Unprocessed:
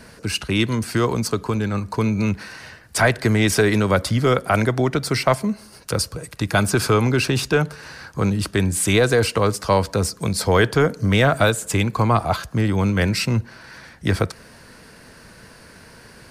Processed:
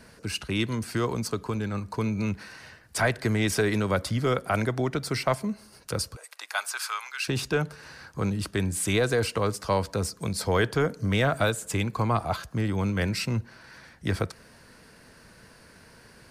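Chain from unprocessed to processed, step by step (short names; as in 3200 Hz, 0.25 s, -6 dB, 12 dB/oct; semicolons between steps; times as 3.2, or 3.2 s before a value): 6.15–7.27 HPF 600 Hz -> 1300 Hz 24 dB/oct; gain -7.5 dB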